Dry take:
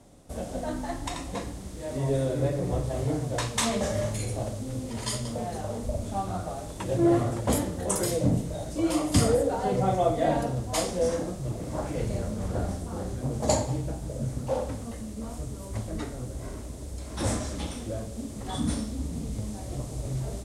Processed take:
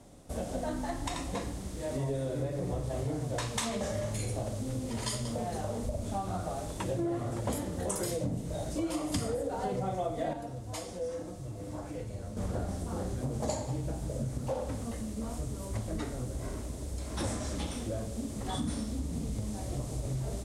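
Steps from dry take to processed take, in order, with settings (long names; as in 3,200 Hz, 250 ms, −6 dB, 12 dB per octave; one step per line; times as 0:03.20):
downward compressor 6 to 1, threshold −30 dBFS, peak gain reduction 13 dB
0:10.33–0:12.37: tuned comb filter 100 Hz, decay 0.15 s, harmonics odd, mix 70%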